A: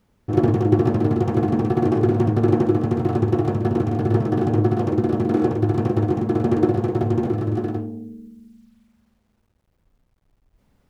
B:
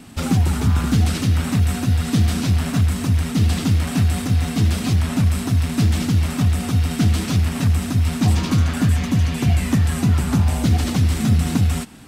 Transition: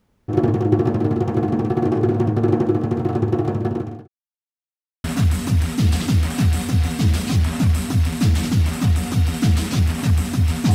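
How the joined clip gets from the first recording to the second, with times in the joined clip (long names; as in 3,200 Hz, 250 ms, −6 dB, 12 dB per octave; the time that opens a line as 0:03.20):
A
0:03.62–0:04.08: fade out linear
0:04.08–0:05.04: silence
0:05.04: continue with B from 0:02.61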